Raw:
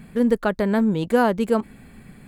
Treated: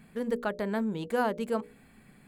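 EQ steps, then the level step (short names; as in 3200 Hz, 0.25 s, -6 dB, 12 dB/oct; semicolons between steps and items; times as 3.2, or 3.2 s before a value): low shelf 180 Hz -7.5 dB; notches 60/120/180/240/300/360/420/480/540/600 Hz; -8.0 dB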